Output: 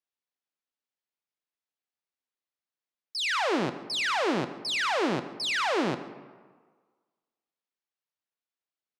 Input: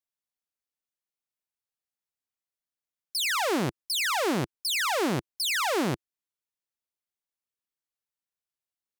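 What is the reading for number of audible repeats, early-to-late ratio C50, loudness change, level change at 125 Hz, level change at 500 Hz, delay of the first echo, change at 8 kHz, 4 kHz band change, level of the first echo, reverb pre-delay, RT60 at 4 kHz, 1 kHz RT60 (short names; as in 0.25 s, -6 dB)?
1, 12.0 dB, -1.0 dB, -5.0 dB, +0.5 dB, 0.14 s, -8.5 dB, -1.5 dB, -20.0 dB, 25 ms, 0.90 s, 1.6 s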